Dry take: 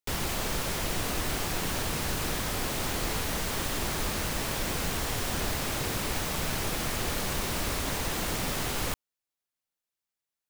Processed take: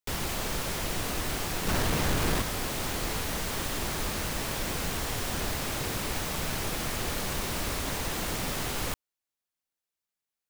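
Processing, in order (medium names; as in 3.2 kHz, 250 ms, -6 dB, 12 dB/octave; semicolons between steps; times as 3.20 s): 1.67–2.42 s: square wave that keeps the level; trim -1 dB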